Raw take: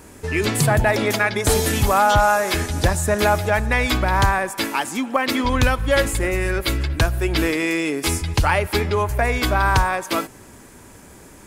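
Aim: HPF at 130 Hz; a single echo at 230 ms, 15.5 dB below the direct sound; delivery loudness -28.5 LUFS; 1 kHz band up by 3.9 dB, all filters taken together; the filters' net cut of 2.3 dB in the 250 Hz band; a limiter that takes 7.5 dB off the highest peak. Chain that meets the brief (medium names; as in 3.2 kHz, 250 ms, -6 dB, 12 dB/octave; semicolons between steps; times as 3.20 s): high-pass 130 Hz; peaking EQ 250 Hz -3 dB; peaking EQ 1 kHz +5 dB; peak limiter -10 dBFS; delay 230 ms -15.5 dB; trim -7 dB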